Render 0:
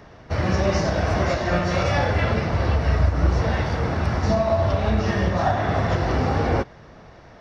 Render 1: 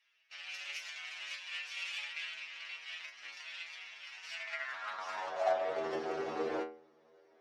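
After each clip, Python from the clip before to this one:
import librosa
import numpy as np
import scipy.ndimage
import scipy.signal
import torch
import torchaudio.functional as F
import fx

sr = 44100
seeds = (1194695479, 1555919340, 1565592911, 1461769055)

y = fx.cheby_harmonics(x, sr, harmonics=(3, 7, 8), levels_db=(-14, -43, -22), full_scale_db=-8.5)
y = fx.stiff_resonator(y, sr, f0_hz=77.0, decay_s=0.47, stiffness=0.002)
y = fx.filter_sweep_highpass(y, sr, from_hz=2600.0, to_hz=390.0, start_s=4.33, end_s=5.84, q=3.5)
y = F.gain(torch.from_numpy(y), -2.5).numpy()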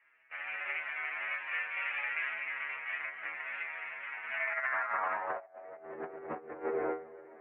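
y = scipy.signal.sosfilt(scipy.signal.butter(8, 2200.0, 'lowpass', fs=sr, output='sos'), x)
y = fx.echo_multitap(y, sr, ms=(292, 307), db=(-13.0, -13.0))
y = fx.over_compress(y, sr, threshold_db=-43.0, ratio=-0.5)
y = F.gain(torch.from_numpy(y), 7.5).numpy()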